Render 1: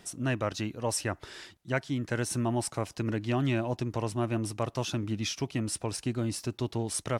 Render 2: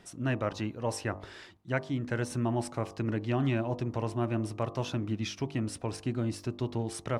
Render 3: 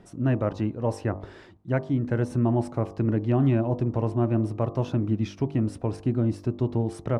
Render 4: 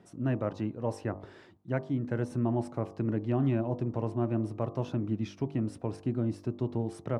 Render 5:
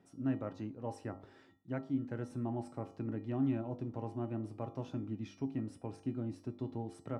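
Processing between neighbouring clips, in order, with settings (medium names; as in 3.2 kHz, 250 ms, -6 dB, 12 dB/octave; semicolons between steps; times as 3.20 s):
treble shelf 4.4 kHz -11.5 dB; de-hum 49.33 Hz, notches 25
tilt shelf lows +8 dB, about 1.3 kHz
high-pass 98 Hz; trim -5.5 dB
feedback comb 270 Hz, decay 0.32 s, harmonics odd, mix 80%; trim +4 dB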